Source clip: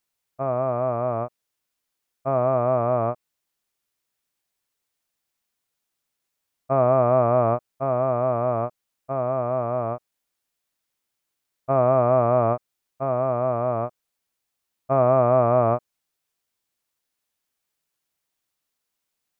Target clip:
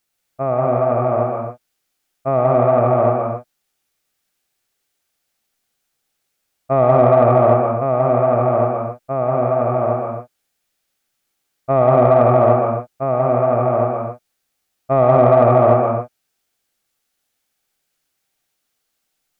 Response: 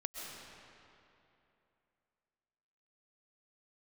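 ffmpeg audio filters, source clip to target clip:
-filter_complex "[0:a]bandreject=frequency=1000:width=8.7[link_01];[1:a]atrim=start_sample=2205,afade=type=out:start_time=0.4:duration=0.01,atrim=end_sample=18081,asetrate=52920,aresample=44100[link_02];[link_01][link_02]afir=irnorm=-1:irlink=0,asplit=2[link_03][link_04];[link_04]asoftclip=type=tanh:threshold=-18dB,volume=-6.5dB[link_05];[link_03][link_05]amix=inputs=2:normalize=0,volume=7dB"

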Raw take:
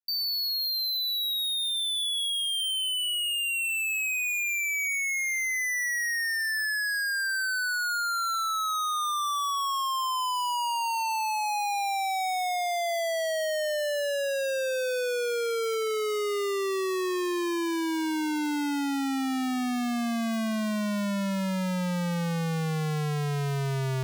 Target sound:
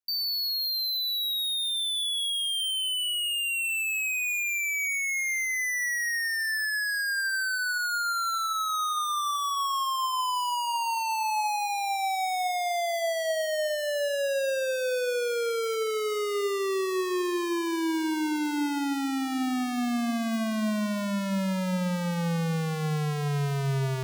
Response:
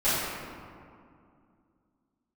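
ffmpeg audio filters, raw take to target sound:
-filter_complex "[0:a]asplit=2[link_01][link_02];[1:a]atrim=start_sample=2205,lowpass=1400[link_03];[link_02][link_03]afir=irnorm=-1:irlink=0,volume=-28dB[link_04];[link_01][link_04]amix=inputs=2:normalize=0"

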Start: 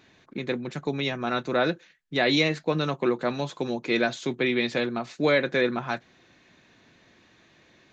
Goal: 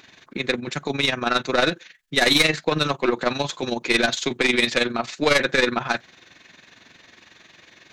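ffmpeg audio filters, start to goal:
ffmpeg -i in.wav -af "tiltshelf=frequency=840:gain=-5,aeval=exprs='0.422*(cos(1*acos(clip(val(0)/0.422,-1,1)))-cos(1*PI/2))+0.0944*(cos(4*acos(clip(val(0)/0.422,-1,1)))-cos(4*PI/2))+0.168*(cos(5*acos(clip(val(0)/0.422,-1,1)))-cos(5*PI/2))':channel_layout=same,tremolo=f=22:d=0.667" out.wav

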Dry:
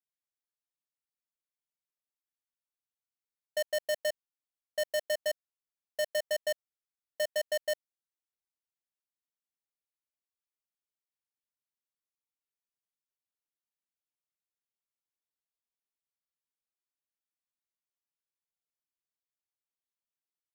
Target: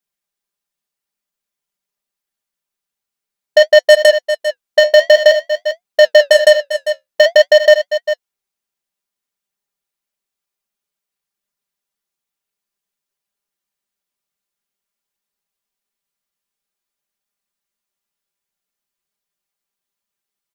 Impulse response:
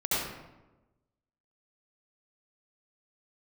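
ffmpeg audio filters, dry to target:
-filter_complex "[0:a]afwtdn=0.00398,aecho=1:1:5:0.67,flanger=delay=4.8:depth=9.4:regen=-53:speed=0.52:shape=sinusoidal,asplit=2[link_01][link_02];[link_02]aecho=0:1:397:0.141[link_03];[link_01][link_03]amix=inputs=2:normalize=0,alimiter=level_in=31.5dB:limit=-1dB:release=50:level=0:latency=1,volume=-1dB"

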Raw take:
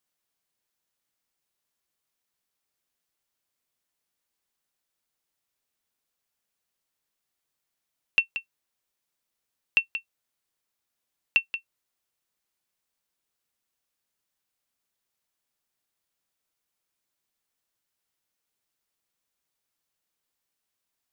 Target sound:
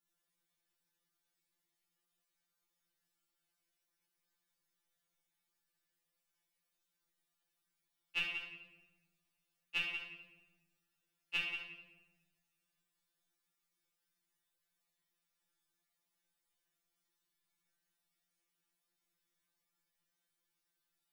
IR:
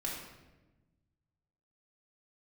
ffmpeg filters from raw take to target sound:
-filter_complex "[1:a]atrim=start_sample=2205[link_01];[0:a][link_01]afir=irnorm=-1:irlink=0,afftfilt=real='re*2.83*eq(mod(b,8),0)':imag='im*2.83*eq(mod(b,8),0)':win_size=2048:overlap=0.75,volume=-2.5dB"

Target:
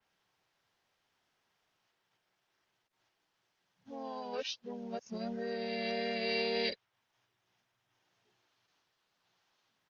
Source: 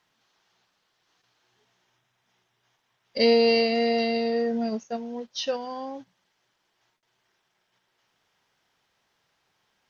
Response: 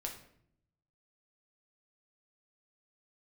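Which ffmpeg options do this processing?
-filter_complex "[0:a]areverse,acrossover=split=110|750|1100[link_01][link_02][link_03][link_04];[link_02]acompressor=threshold=-33dB:ratio=4[link_05];[link_01][link_05][link_03][link_04]amix=inputs=4:normalize=0,asplit=2[link_06][link_07];[link_07]asetrate=37084,aresample=44100,atempo=1.18921,volume=-5dB[link_08];[link_06][link_08]amix=inputs=2:normalize=0,adynamicequalizer=threshold=0.00794:dfrequency=3300:dqfactor=0.7:tfrequency=3300:tqfactor=0.7:attack=5:release=100:ratio=0.375:range=2:mode=cutabove:tftype=highshelf,volume=-8dB"

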